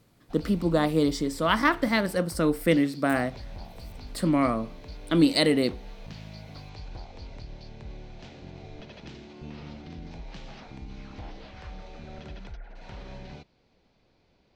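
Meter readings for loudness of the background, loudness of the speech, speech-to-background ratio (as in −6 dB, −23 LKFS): −44.5 LKFS, −25.0 LKFS, 19.5 dB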